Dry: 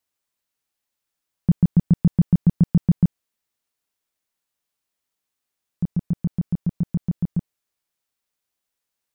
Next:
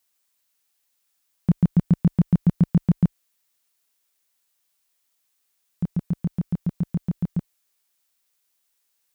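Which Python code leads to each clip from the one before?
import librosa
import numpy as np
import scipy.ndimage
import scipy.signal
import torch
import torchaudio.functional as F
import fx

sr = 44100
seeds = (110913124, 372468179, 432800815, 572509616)

y = fx.tilt_eq(x, sr, slope=2.0)
y = y * 10.0 ** (3.5 / 20.0)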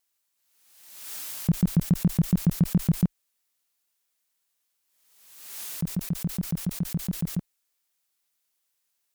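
y = fx.vibrato(x, sr, rate_hz=9.9, depth_cents=66.0)
y = fx.pre_swell(y, sr, db_per_s=52.0)
y = y * 10.0 ** (-4.0 / 20.0)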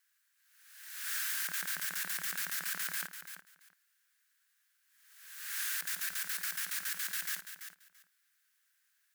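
y = fx.highpass_res(x, sr, hz=1600.0, q=6.2)
y = fx.echo_feedback(y, sr, ms=337, feedback_pct=17, wet_db=-10)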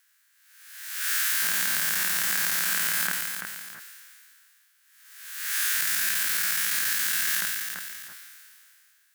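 y = fx.spec_dilate(x, sr, span_ms=120)
y = fx.sustainer(y, sr, db_per_s=23.0)
y = y * 10.0 ** (5.5 / 20.0)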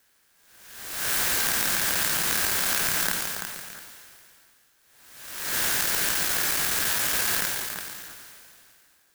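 y = fx.clock_jitter(x, sr, seeds[0], jitter_ms=0.093)
y = y * 10.0 ** (2.5 / 20.0)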